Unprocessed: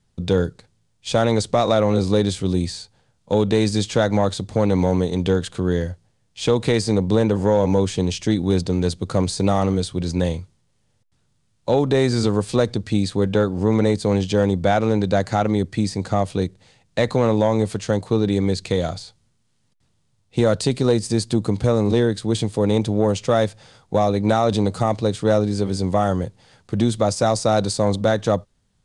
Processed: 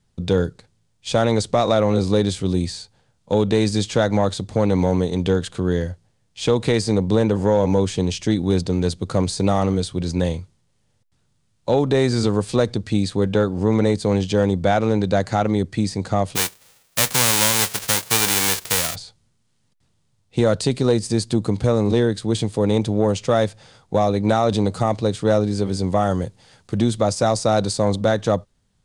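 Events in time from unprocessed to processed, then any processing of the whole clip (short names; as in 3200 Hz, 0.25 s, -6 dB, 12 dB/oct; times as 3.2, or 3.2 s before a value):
16.35–18.94 spectral whitening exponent 0.1
26.1–26.78 high shelf 4200 Hz +5 dB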